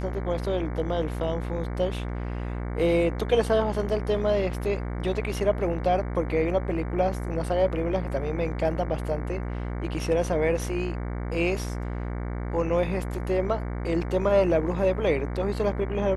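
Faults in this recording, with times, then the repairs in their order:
buzz 60 Hz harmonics 38 -31 dBFS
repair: de-hum 60 Hz, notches 38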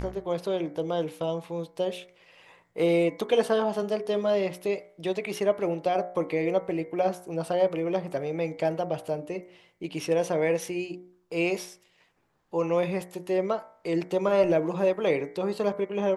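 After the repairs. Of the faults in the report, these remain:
nothing left

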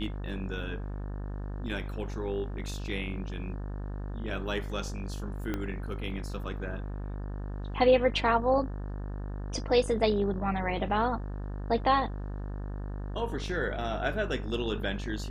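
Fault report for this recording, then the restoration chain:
buzz 50 Hz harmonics 36 -36 dBFS
5.54 s: pop -19 dBFS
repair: de-click; de-hum 50 Hz, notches 36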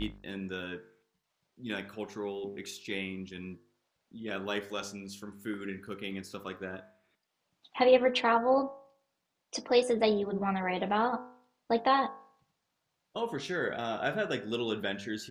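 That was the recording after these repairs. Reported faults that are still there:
5.54 s: pop

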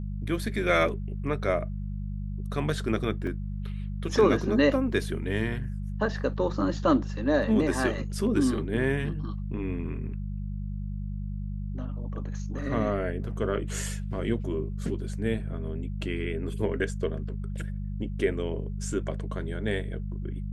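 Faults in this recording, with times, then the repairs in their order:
hum 50 Hz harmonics 4 -33 dBFS
3.27 s: dropout 2.5 ms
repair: de-hum 50 Hz, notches 4; interpolate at 3.27 s, 2.5 ms

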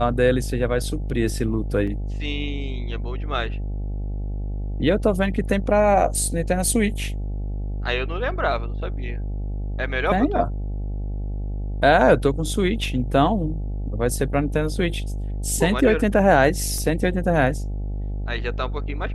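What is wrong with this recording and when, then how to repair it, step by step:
buzz 50 Hz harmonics 17 -27 dBFS
1.87 s: dropout 4.8 ms
16.78 s: dropout 2.3 ms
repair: de-hum 50 Hz, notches 17; interpolate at 1.87 s, 4.8 ms; interpolate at 16.78 s, 2.3 ms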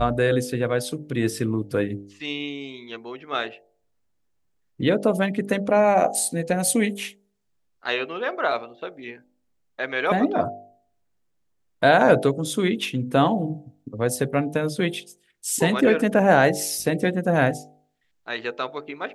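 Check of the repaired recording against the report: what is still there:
nothing left

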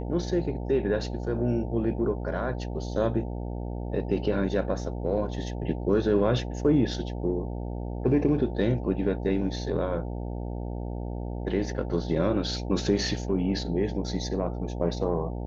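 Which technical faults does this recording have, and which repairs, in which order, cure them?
buzz 60 Hz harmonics 15 -33 dBFS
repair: de-hum 60 Hz, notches 15

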